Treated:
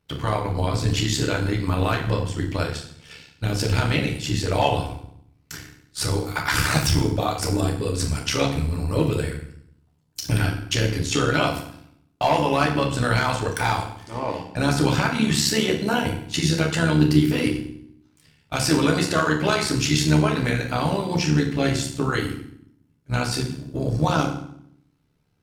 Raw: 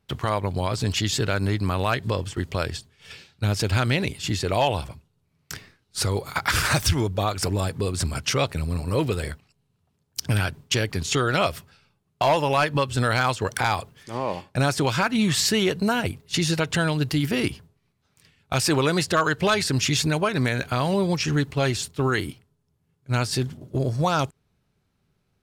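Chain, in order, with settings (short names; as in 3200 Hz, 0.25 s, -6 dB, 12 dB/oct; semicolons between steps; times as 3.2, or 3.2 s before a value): FDN reverb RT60 0.66 s, low-frequency decay 1.45×, high-frequency decay 0.9×, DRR -0.5 dB; AM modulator 70 Hz, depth 45%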